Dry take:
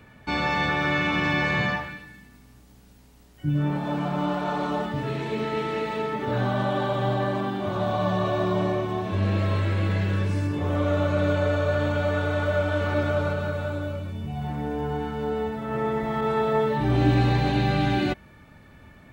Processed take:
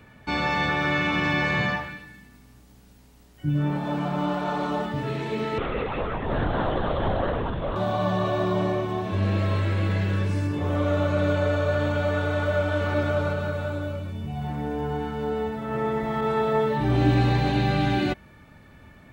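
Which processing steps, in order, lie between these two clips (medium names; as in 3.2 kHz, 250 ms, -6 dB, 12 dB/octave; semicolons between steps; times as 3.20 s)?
5.58–7.76 s: LPC vocoder at 8 kHz whisper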